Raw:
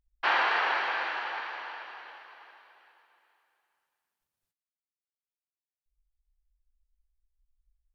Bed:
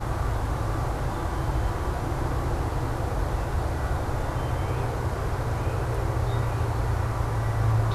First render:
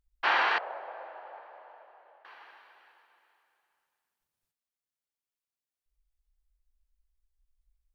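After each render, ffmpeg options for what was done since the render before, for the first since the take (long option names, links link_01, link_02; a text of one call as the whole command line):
ffmpeg -i in.wav -filter_complex "[0:a]asettb=1/sr,asplit=3[link_01][link_02][link_03];[link_01]atrim=end=0.584[link_04];[link_02]atrim=start=0.58:end=2.25,asetpts=PTS-STARTPTS,afade=type=in:duration=0.004:curve=qsin,afade=type=out:start_time=1.666:duration=0.004:curve=qsin,bandpass=frequency=600:width_type=q:width=3.8[link_05];[link_03]atrim=start=2.246[link_06];[link_04][link_05]acrossfade=duration=0.004:curve1=hsin:curve2=qsin[link_07];[link_07][link_06]acrossfade=duration=0.004:curve1=qsin:curve2=hsin" out.wav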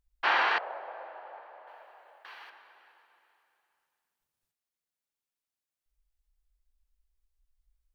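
ffmpeg -i in.wav -filter_complex "[0:a]asettb=1/sr,asplit=3[link_01][link_02][link_03];[link_01]atrim=end=1.674[link_04];[link_02]atrim=start=1.67:end=2.5,asetpts=PTS-STARTPTS,afade=type=in:duration=0.004:curve=qsin,afade=type=out:start_time=0.826:duration=0.004:curve=qsin,highshelf=frequency=2200:gain=11[link_05];[link_03]atrim=start=2.496[link_06];[link_04][link_05]acrossfade=duration=0.004:curve1=hsin:curve2=qsin[link_07];[link_07][link_06]acrossfade=duration=0.004:curve1=qsin:curve2=hsin" out.wav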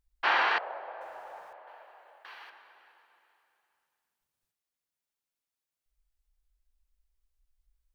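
ffmpeg -i in.wav -filter_complex "[0:a]asettb=1/sr,asplit=3[link_01][link_02][link_03];[link_01]atrim=end=1.014[link_04];[link_02]atrim=start=1.01:end=1.53,asetpts=PTS-STARTPTS,afade=type=in:duration=0.004:curve=qsin,afade=type=out:start_time=0.516:duration=0.004:curve=qsin,aeval=exprs='val(0)+0.5*0.00133*sgn(val(0))':channel_layout=same[link_05];[link_03]atrim=start=1.526[link_06];[link_04][link_05]acrossfade=duration=0.004:curve1=hsin:curve2=qsin[link_07];[link_07][link_06]acrossfade=duration=0.004:curve1=qsin:curve2=hsin" out.wav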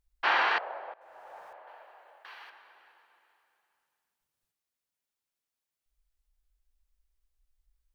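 ffmpeg -i in.wav -filter_complex "[0:a]asplit=3[link_01][link_02][link_03];[link_01]afade=type=out:start_time=2.23:duration=0.02[link_04];[link_02]asubboost=boost=4.5:cutoff=110,afade=type=in:start_time=2.23:duration=0.02,afade=type=out:start_time=2.63:duration=0.02[link_05];[link_03]afade=type=in:start_time=2.63:duration=0.02[link_06];[link_04][link_05][link_06]amix=inputs=3:normalize=0,asplit=2[link_07][link_08];[link_07]atrim=end=0.94,asetpts=PTS-STARTPTS,afade=type=out:start_time=0.936:duration=0.004:curve=hsin:silence=0.0794328[link_09];[link_08]atrim=start=0.94,asetpts=PTS-STARTPTS,afade=type=in:duration=0.54:silence=0.0794328[link_10];[link_09][link_10]concat=n=2:v=0:a=1" out.wav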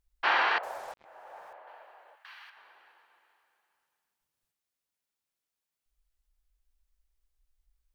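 ffmpeg -i in.wav -filter_complex "[0:a]asettb=1/sr,asplit=3[link_01][link_02][link_03];[link_01]atrim=end=0.634[link_04];[link_02]atrim=start=0.63:end=1.05,asetpts=PTS-STARTPTS,afade=type=in:duration=0.004:curve=qsin,afade=type=out:start_time=0.416:duration=0.004:curve=qsin,acrusher=bits=7:mix=0:aa=0.5[link_05];[link_03]atrim=start=1.046[link_06];[link_04][link_05]acrossfade=duration=0.004:curve1=hsin:curve2=qsin[link_07];[link_07][link_06]acrossfade=duration=0.004:curve1=qsin:curve2=hsin,asettb=1/sr,asplit=3[link_08][link_09][link_10];[link_08]atrim=end=2.154[link_11];[link_09]atrim=start=2.15:end=2.57,asetpts=PTS-STARTPTS,afade=type=in:duration=0.004:curve=qsin,afade=type=out:start_time=0.416:duration=0.004:curve=qsin,highpass=1200[link_12];[link_10]atrim=start=2.566[link_13];[link_11][link_12]acrossfade=duration=0.004:curve1=hsin:curve2=qsin[link_14];[link_14][link_13]acrossfade=duration=0.004:curve1=qsin:curve2=hsin" out.wav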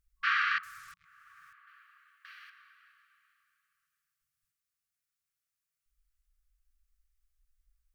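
ffmpeg -i in.wav -af "afftfilt=real='re*(1-between(b*sr/4096,180,1100))':imag='im*(1-between(b*sr/4096,180,1100))':win_size=4096:overlap=0.75,equalizer=frequency=3500:width_type=o:width=0.91:gain=-4.5" out.wav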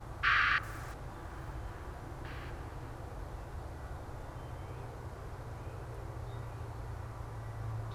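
ffmpeg -i in.wav -i bed.wav -filter_complex "[1:a]volume=-17dB[link_01];[0:a][link_01]amix=inputs=2:normalize=0" out.wav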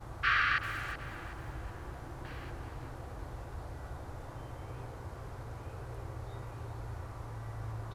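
ffmpeg -i in.wav -af "aecho=1:1:375|750|1125|1500:0.266|0.0984|0.0364|0.0135" out.wav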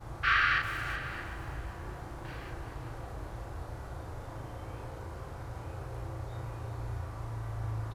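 ffmpeg -i in.wav -filter_complex "[0:a]asplit=2[link_01][link_02];[link_02]adelay=36,volume=-2dB[link_03];[link_01][link_03]amix=inputs=2:normalize=0,aecho=1:1:619:0.158" out.wav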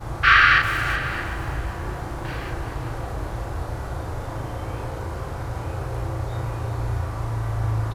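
ffmpeg -i in.wav -af "volume=12dB" out.wav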